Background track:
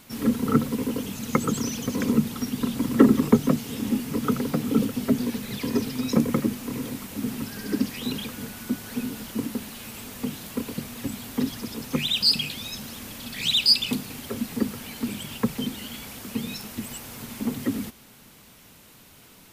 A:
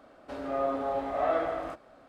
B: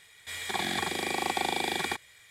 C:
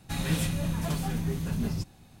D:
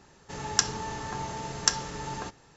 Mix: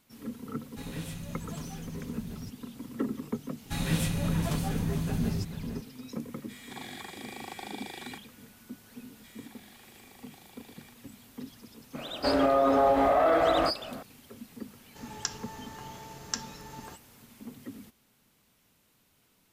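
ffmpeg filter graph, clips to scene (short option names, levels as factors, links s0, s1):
-filter_complex "[3:a]asplit=2[s0][s1];[2:a]asplit=2[s2][s3];[0:a]volume=0.15[s4];[s1]asplit=2[s5][s6];[s6]adelay=449,volume=0.398,highshelf=f=4000:g=-10.1[s7];[s5][s7]amix=inputs=2:normalize=0[s8];[s3]acompressor=threshold=0.0141:ratio=6:attack=3.2:release=140:knee=1:detection=peak[s9];[1:a]alimiter=level_in=23.7:limit=0.891:release=50:level=0:latency=1[s10];[s0]atrim=end=2.2,asetpts=PTS-STARTPTS,volume=0.282,afade=t=in:d=0.004:c=hsin,afade=t=out:st=2.196:d=0.004:c=hsin,adelay=670[s11];[s8]atrim=end=2.2,asetpts=PTS-STARTPTS,volume=0.944,afade=t=in:d=0.004:c=hsin,afade=t=out:st=2.196:d=0.004:c=hsin,adelay=159201S[s12];[s2]atrim=end=2.3,asetpts=PTS-STARTPTS,volume=0.237,afade=t=in:d=0.004:c=hsin,afade=t=out:st=2.296:d=0.004:c=hsin,adelay=6220[s13];[s9]atrim=end=2.3,asetpts=PTS-STARTPTS,volume=0.158,afade=t=in:d=0.004:c=hsin,afade=t=out:st=2.296:d=0.004:c=hsin,adelay=8970[s14];[s10]atrim=end=2.08,asetpts=PTS-STARTPTS,volume=0.188,afade=t=in:d=0.004:c=hsin,afade=t=out:st=2.076:d=0.004:c=hsin,adelay=11950[s15];[4:a]atrim=end=2.56,asetpts=PTS-STARTPTS,volume=0.335,afade=t=in:d=0.004:c=hsin,afade=t=out:st=2.556:d=0.004:c=hsin,adelay=14660[s16];[s4][s11][s12][s13][s14][s15][s16]amix=inputs=7:normalize=0"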